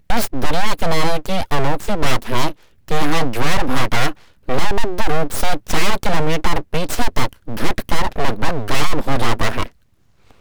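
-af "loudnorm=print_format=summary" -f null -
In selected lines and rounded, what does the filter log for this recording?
Input Integrated:    -21.6 LUFS
Input True Peak:      -4.9 dBTP
Input LRA:             2.1 LU
Input Threshold:     -32.0 LUFS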